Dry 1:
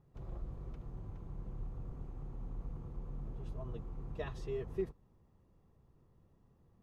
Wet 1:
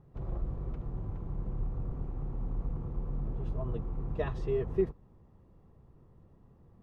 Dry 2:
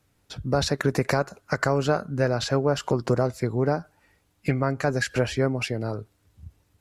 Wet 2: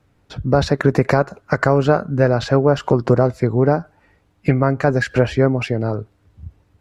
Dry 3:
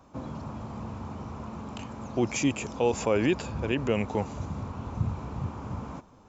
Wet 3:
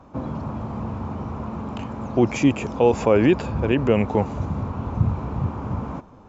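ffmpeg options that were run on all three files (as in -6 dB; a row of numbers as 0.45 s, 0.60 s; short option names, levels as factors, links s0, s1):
-af "lowpass=f=1700:p=1,volume=2.66"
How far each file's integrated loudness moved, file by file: +8.5 LU, +7.5 LU, +8.0 LU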